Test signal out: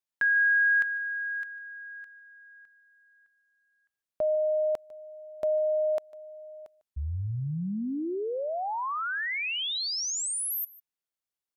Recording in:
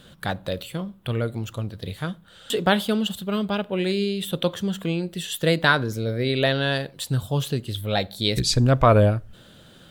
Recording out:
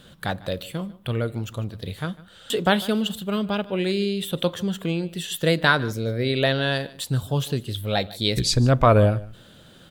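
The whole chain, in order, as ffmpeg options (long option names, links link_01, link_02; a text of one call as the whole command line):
ffmpeg -i in.wav -af "aecho=1:1:150:0.0944" out.wav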